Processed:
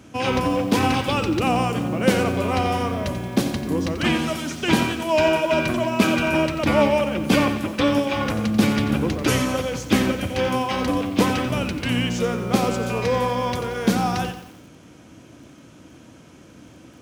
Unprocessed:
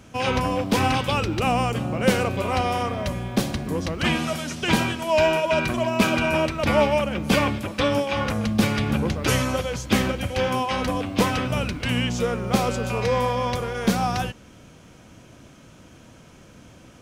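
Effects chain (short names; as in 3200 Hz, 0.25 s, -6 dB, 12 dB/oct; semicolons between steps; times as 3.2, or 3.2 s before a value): HPF 64 Hz; bell 300 Hz +7.5 dB 0.5 oct; lo-fi delay 89 ms, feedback 55%, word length 7-bit, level -10.5 dB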